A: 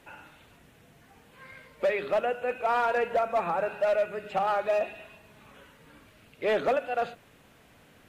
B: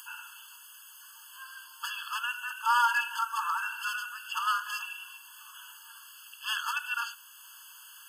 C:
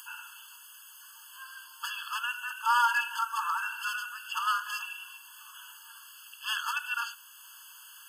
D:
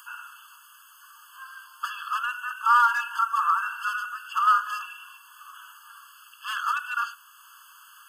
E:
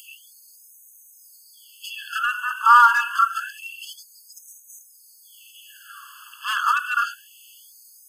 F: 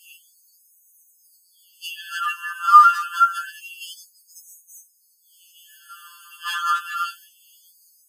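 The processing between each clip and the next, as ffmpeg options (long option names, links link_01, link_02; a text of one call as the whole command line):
ffmpeg -i in.wav -af "crystalizer=i=7:c=0,acompressor=mode=upward:threshold=-42dB:ratio=2.5,afftfilt=real='re*eq(mod(floor(b*sr/1024/870),2),1)':imag='im*eq(mod(floor(b*sr/1024/870),2),1)':win_size=1024:overlap=0.75" out.wav
ffmpeg -i in.wav -af anull out.wav
ffmpeg -i in.wav -filter_complex "[0:a]acrossover=split=1800|3400[link_01][link_02][link_03];[link_02]aeval=exprs='0.0224*(abs(mod(val(0)/0.0224+3,4)-2)-1)':channel_layout=same[link_04];[link_01][link_04][link_03]amix=inputs=3:normalize=0,highpass=frequency=1200:width_type=q:width=5.6,volume=-4dB" out.wav
ffmpeg -i in.wav -af "afftfilt=real='re*gte(b*sr/1024,810*pow(5500/810,0.5+0.5*sin(2*PI*0.27*pts/sr)))':imag='im*gte(b*sr/1024,810*pow(5500/810,0.5+0.5*sin(2*PI*0.27*pts/sr)))':win_size=1024:overlap=0.75,volume=6.5dB" out.wav
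ffmpeg -i in.wav -af "agate=range=-33dB:threshold=-43dB:ratio=3:detection=peak,tiltshelf=frequency=940:gain=-4,afftfilt=real='re*2.83*eq(mod(b,8),0)':imag='im*2.83*eq(mod(b,8),0)':win_size=2048:overlap=0.75,volume=-1dB" out.wav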